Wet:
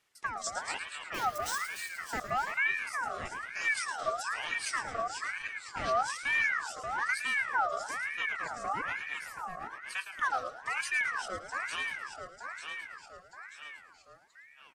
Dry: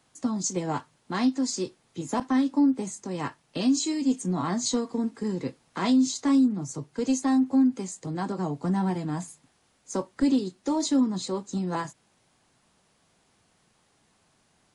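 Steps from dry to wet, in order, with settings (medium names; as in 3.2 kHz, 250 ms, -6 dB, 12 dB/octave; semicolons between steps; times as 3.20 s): 1.14–1.63 s: zero-crossing glitches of -27.5 dBFS; reverb removal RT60 1.2 s; ever faster or slower copies 212 ms, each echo -1 st, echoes 3, each echo -6 dB; frequency-shifting echo 110 ms, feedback 41%, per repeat +52 Hz, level -10 dB; ring modulator with a swept carrier 1.5 kHz, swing 40%, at 1.1 Hz; trim -5.5 dB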